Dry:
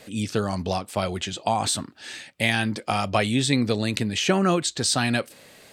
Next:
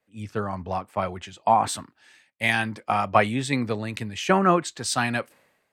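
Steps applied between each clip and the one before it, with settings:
graphic EQ with 10 bands 1,000 Hz +7 dB, 2,000 Hz +4 dB, 4,000 Hz −6 dB, 8,000 Hz −4 dB
multiband upward and downward expander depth 100%
level −3.5 dB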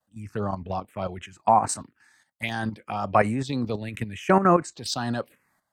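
output level in coarse steps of 10 dB
phaser swept by the level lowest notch 390 Hz, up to 3,400 Hz, full sweep at −24.5 dBFS
level +4.5 dB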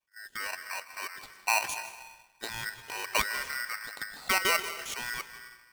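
comb and all-pass reverb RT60 1.2 s, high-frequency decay 0.8×, pre-delay 115 ms, DRR 11 dB
ring modulator with a square carrier 1,700 Hz
level −8.5 dB

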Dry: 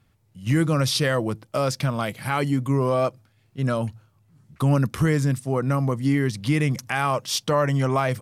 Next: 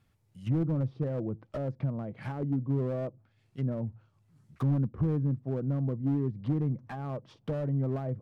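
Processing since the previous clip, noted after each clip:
treble cut that deepens with the level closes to 460 Hz, closed at −21.5 dBFS
slew-rate limiting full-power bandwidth 33 Hz
level −6.5 dB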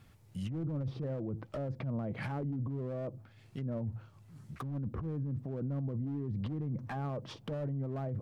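compressor whose output falls as the input rises −36 dBFS, ratio −1
brickwall limiter −34 dBFS, peak gain reduction 11.5 dB
level +4.5 dB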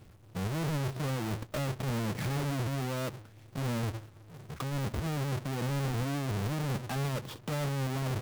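each half-wave held at its own peak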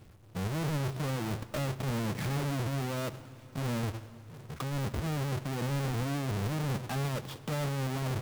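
dense smooth reverb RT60 3.9 s, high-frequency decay 0.8×, DRR 15.5 dB

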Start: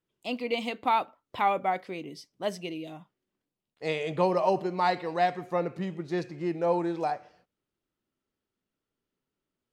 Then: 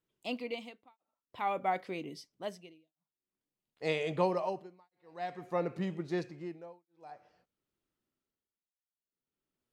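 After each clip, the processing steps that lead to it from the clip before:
amplitude tremolo 0.51 Hz, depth 100%
level −2 dB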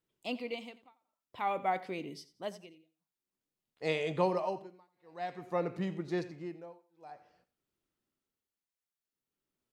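repeating echo 88 ms, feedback 26%, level −17 dB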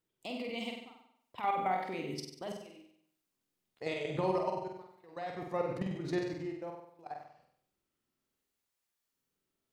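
output level in coarse steps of 16 dB
brickwall limiter −32 dBFS, peak gain reduction 10.5 dB
flutter between parallel walls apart 8.2 metres, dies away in 0.69 s
level +8 dB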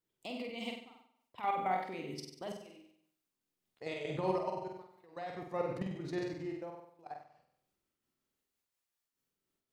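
amplitude modulation by smooth noise, depth 60%
level +1 dB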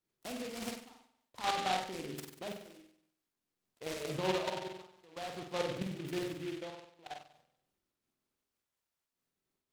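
short delay modulated by noise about 2,400 Hz, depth 0.1 ms

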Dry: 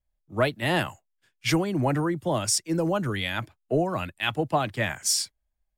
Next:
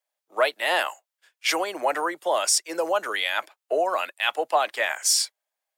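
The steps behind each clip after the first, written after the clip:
high-pass filter 520 Hz 24 dB per octave
in parallel at +2 dB: brickwall limiter −23 dBFS, peak gain reduction 11.5 dB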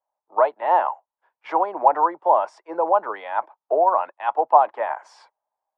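low-pass with resonance 920 Hz, resonance Q 4.9
level −1 dB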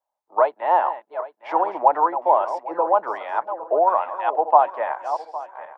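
feedback delay that plays each chunk backwards 404 ms, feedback 51%, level −11 dB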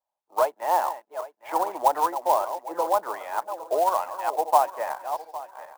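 converter with an unsteady clock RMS 0.022 ms
level −4.5 dB

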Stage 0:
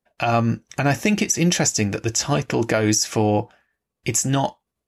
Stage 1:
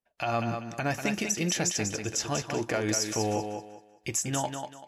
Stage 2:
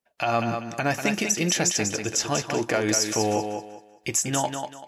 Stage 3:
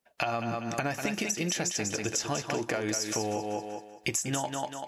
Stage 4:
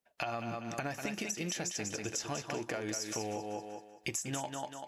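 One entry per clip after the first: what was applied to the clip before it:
parametric band 150 Hz −4 dB 2.3 octaves; feedback echo with a high-pass in the loop 193 ms, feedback 29%, high-pass 150 Hz, level −6 dB; level −8.5 dB
low-shelf EQ 82 Hz −11.5 dB; level +5.5 dB
downward compressor 12 to 1, threshold −31 dBFS, peak gain reduction 13.5 dB; level +4 dB
loose part that buzzes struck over −38 dBFS, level −36 dBFS; level −6.5 dB

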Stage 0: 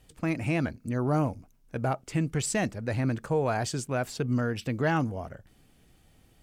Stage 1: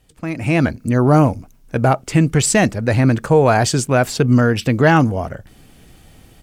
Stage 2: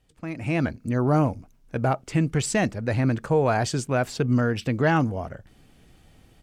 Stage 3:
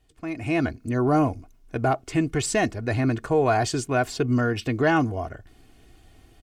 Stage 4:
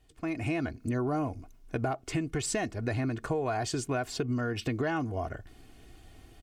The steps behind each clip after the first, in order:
automatic gain control gain up to 13 dB; level +2 dB
high-shelf EQ 9,000 Hz −8.5 dB; level −8.5 dB
comb filter 2.8 ms, depth 55%
downward compressor, threshold −28 dBFS, peak gain reduction 11.5 dB

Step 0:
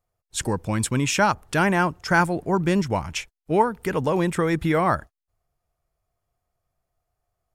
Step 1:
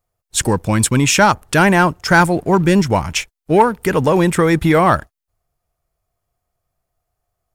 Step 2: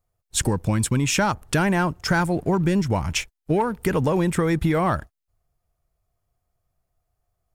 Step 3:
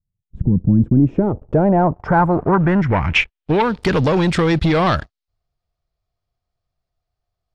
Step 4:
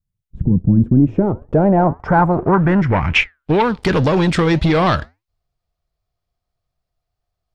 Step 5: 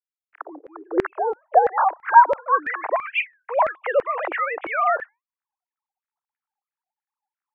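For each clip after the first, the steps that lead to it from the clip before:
high-shelf EQ 8,300 Hz +4.5 dB; leveller curve on the samples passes 1; level +5 dB
low-shelf EQ 230 Hz +6.5 dB; downward compressor, threshold −13 dBFS, peak gain reduction 8 dB; level −4.5 dB
leveller curve on the samples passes 2; low-pass filter sweep 180 Hz → 4,400 Hz, 0:00.39–0:03.78
flanger 1.9 Hz, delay 3.6 ms, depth 4.1 ms, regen −84%; level +5.5 dB
three sine waves on the formant tracks; single-sideband voice off tune +100 Hz 260–2,500 Hz; auto-filter high-pass saw down 3 Hz 490–1,900 Hz; level −6 dB

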